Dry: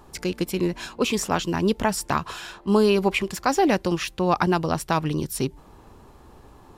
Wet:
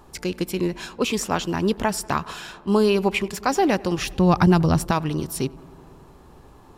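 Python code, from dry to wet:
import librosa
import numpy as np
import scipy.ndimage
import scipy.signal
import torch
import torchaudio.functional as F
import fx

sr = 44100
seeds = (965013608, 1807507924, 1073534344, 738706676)

y = fx.bass_treble(x, sr, bass_db=12, treble_db=3, at=(3.98, 4.91))
y = fx.echo_filtered(y, sr, ms=94, feedback_pct=82, hz=2900.0, wet_db=-23.5)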